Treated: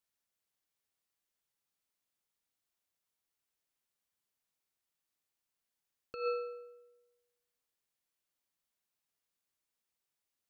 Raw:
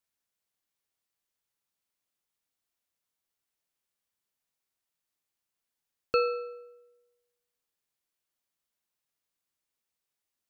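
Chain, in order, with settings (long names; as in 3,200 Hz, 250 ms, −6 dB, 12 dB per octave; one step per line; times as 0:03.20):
compressor whose output falls as the input rises −29 dBFS, ratio −0.5
level −5 dB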